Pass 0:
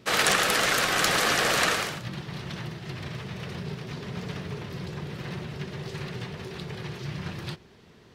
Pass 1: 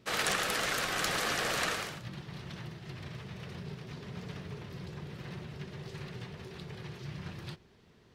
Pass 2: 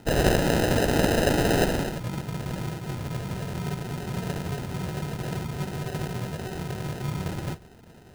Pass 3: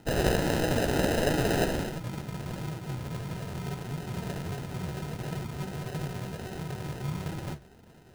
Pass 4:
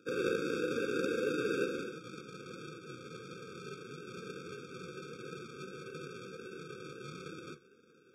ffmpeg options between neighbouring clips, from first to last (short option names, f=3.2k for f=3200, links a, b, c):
-af "lowshelf=f=79:g=5.5,volume=-8.5dB"
-filter_complex "[0:a]asplit=2[a][b];[b]alimiter=limit=-23dB:level=0:latency=1:release=365,volume=-1.5dB[c];[a][c]amix=inputs=2:normalize=0,acrusher=samples=39:mix=1:aa=0.000001,volume=6.5dB"
-af "flanger=delay=6.1:depth=9.7:regen=66:speed=1.5:shape=sinusoidal"
-af "highpass=380,lowpass=5.9k,afftfilt=real='re*eq(mod(floor(b*sr/1024/540),2),0)':imag='im*eq(mod(floor(b*sr/1024/540),2),0)':win_size=1024:overlap=0.75,volume=-1dB"